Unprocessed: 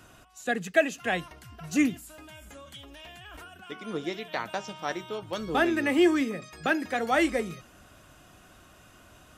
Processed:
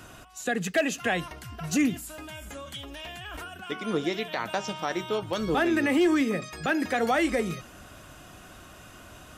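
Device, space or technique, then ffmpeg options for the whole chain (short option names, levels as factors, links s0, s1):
clipper into limiter: -af "asoftclip=type=hard:threshold=0.178,alimiter=limit=0.0708:level=0:latency=1:release=105,volume=2.11"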